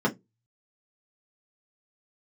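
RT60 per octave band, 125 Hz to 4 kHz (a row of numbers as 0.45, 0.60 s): 0.35, 0.25, 0.20, 0.10, 0.10, 0.15 s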